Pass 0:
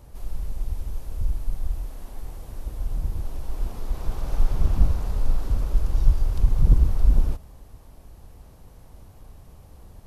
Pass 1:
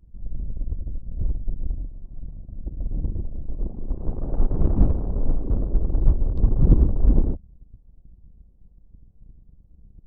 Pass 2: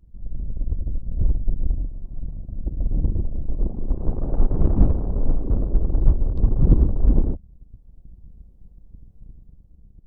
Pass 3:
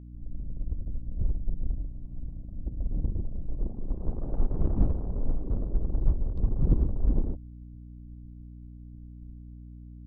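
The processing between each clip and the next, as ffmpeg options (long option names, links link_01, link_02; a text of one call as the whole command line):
ffmpeg -i in.wav -af "anlmdn=10,equalizer=frequency=310:width_type=o:width=2.3:gain=13,volume=-1dB" out.wav
ffmpeg -i in.wav -af "dynaudnorm=framelen=140:gausssize=9:maxgain=5dB" out.wav
ffmpeg -i in.wav -af "agate=range=-33dB:threshold=-37dB:ratio=3:detection=peak,aeval=exprs='val(0)+0.0178*(sin(2*PI*60*n/s)+sin(2*PI*2*60*n/s)/2+sin(2*PI*3*60*n/s)/3+sin(2*PI*4*60*n/s)/4+sin(2*PI*5*60*n/s)/5)':channel_layout=same,volume=-8dB" out.wav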